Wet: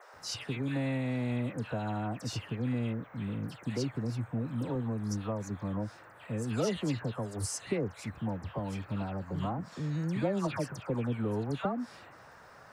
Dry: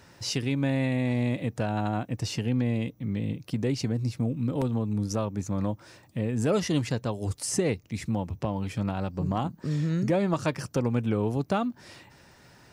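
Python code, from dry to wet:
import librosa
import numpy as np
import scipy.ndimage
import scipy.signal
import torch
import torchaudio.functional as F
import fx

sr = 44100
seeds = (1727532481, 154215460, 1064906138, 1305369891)

y = fx.dispersion(x, sr, late='lows', ms=139.0, hz=1700.0)
y = fx.dmg_noise_band(y, sr, seeds[0], low_hz=460.0, high_hz=1700.0, level_db=-49.0)
y = y * librosa.db_to_amplitude(-6.0)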